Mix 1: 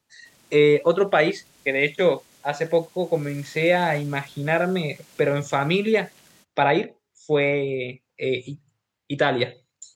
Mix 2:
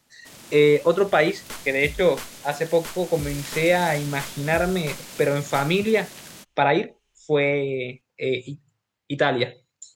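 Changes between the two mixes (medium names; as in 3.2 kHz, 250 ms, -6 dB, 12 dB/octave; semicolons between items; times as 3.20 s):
first sound +12.0 dB; second sound: unmuted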